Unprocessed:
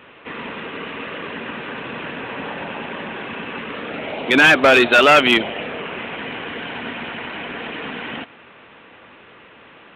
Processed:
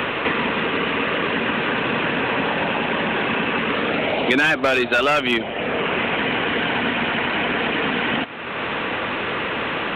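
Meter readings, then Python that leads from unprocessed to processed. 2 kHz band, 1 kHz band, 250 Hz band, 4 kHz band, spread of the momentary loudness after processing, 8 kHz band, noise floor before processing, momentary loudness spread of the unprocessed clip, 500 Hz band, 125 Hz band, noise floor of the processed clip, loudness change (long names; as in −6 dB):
−1.0 dB, +0.5 dB, +1.5 dB, −0.5 dB, 6 LU, −7.5 dB, −46 dBFS, 19 LU, −1.0 dB, +5.0 dB, −28 dBFS, −1.5 dB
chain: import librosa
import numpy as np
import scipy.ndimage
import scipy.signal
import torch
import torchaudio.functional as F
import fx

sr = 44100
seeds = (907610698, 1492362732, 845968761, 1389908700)

y = fx.band_squash(x, sr, depth_pct=100)
y = F.gain(torch.from_numpy(y), 7.0).numpy()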